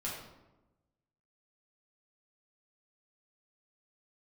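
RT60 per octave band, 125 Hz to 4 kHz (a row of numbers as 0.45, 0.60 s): 1.4, 1.3, 1.1, 0.95, 0.75, 0.60 s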